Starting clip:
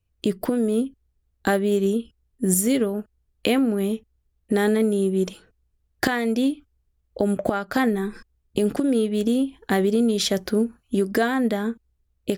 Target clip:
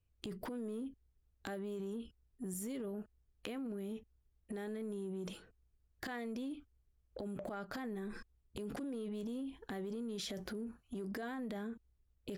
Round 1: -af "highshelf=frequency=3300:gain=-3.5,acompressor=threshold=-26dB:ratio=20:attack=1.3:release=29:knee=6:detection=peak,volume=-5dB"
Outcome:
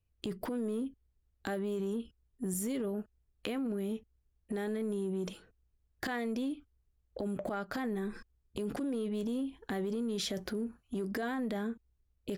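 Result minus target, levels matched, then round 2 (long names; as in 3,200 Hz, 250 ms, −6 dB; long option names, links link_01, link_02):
downward compressor: peak gain reduction −7 dB
-af "highshelf=frequency=3300:gain=-3.5,acompressor=threshold=-33.5dB:ratio=20:attack=1.3:release=29:knee=6:detection=peak,volume=-5dB"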